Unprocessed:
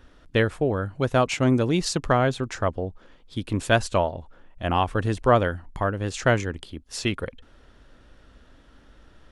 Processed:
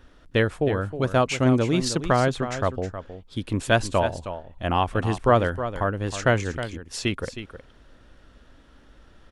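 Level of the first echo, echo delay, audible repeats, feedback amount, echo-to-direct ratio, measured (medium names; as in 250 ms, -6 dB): -11.0 dB, 315 ms, 1, no regular repeats, -11.0 dB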